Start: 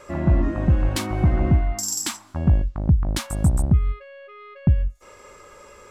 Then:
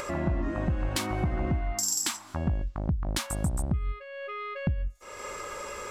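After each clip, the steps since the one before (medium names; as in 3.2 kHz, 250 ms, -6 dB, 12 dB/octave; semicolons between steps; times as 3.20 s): upward compressor, threshold -26 dBFS; bass shelf 400 Hz -6 dB; compression, threshold -24 dBFS, peak gain reduction 6.5 dB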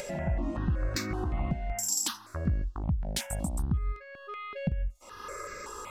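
stepped phaser 5.3 Hz 310–3100 Hz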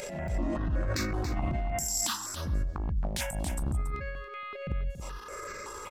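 transient shaper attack -12 dB, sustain +8 dB; delay 280 ms -9.5 dB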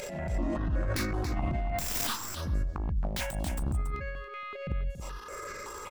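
tracing distortion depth 0.19 ms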